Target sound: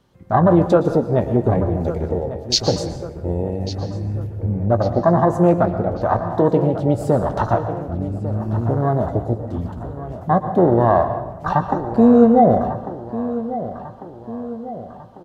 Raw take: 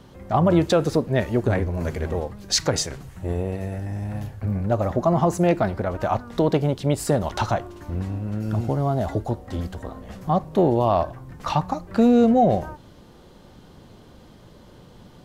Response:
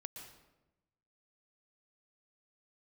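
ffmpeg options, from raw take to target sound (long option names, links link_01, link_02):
-filter_complex "[0:a]afwtdn=0.0708,asplit=2[link_01][link_02];[link_02]adelay=17,volume=-13dB[link_03];[link_01][link_03]amix=inputs=2:normalize=0,asplit=2[link_04][link_05];[link_05]adelay=1147,lowpass=frequency=3700:poles=1,volume=-13dB,asplit=2[link_06][link_07];[link_07]adelay=1147,lowpass=frequency=3700:poles=1,volume=0.53,asplit=2[link_08][link_09];[link_09]adelay=1147,lowpass=frequency=3700:poles=1,volume=0.53,asplit=2[link_10][link_11];[link_11]adelay=1147,lowpass=frequency=3700:poles=1,volume=0.53,asplit=2[link_12][link_13];[link_13]adelay=1147,lowpass=frequency=3700:poles=1,volume=0.53[link_14];[link_04][link_06][link_08][link_10][link_12][link_14]amix=inputs=6:normalize=0,asplit=2[link_15][link_16];[1:a]atrim=start_sample=2205,lowshelf=frequency=490:gain=-5.5[link_17];[link_16][link_17]afir=irnorm=-1:irlink=0,volume=7.5dB[link_18];[link_15][link_18]amix=inputs=2:normalize=0,volume=-1.5dB"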